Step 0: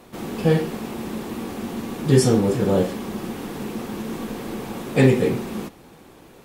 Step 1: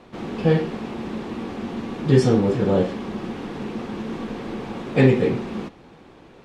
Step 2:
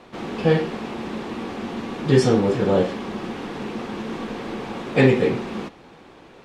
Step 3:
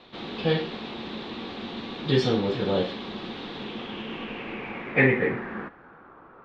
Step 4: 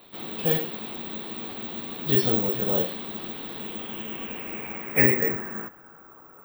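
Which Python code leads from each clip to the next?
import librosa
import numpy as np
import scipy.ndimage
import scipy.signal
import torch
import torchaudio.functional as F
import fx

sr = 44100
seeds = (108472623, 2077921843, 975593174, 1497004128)

y1 = scipy.signal.sosfilt(scipy.signal.butter(2, 4200.0, 'lowpass', fs=sr, output='sos'), x)
y2 = fx.low_shelf(y1, sr, hz=340.0, db=-6.5)
y2 = y2 * librosa.db_to_amplitude(3.5)
y3 = fx.filter_sweep_lowpass(y2, sr, from_hz=3800.0, to_hz=1300.0, start_s=3.51, end_s=6.19, q=4.6)
y3 = y3 * librosa.db_to_amplitude(-6.5)
y4 = (np.kron(scipy.signal.resample_poly(y3, 1, 2), np.eye(2)[0]) * 2)[:len(y3)]
y4 = y4 * librosa.db_to_amplitude(-2.5)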